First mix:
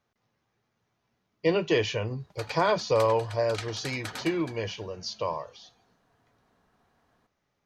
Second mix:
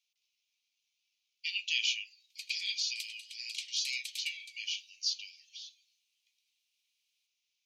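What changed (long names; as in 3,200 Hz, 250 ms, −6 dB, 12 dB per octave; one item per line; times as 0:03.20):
speech +4.0 dB
master: add Butterworth high-pass 2,400 Hz 72 dB per octave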